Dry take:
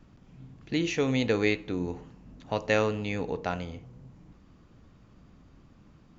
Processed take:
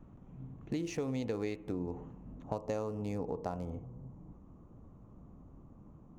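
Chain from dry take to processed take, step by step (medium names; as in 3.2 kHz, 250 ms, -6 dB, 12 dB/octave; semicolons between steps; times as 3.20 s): local Wiener filter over 9 samples; high-order bell 2.4 kHz -8.5 dB, from 2.42 s -15 dB; compression 6:1, threshold -34 dBFS, peak gain reduction 12.5 dB; trim +1 dB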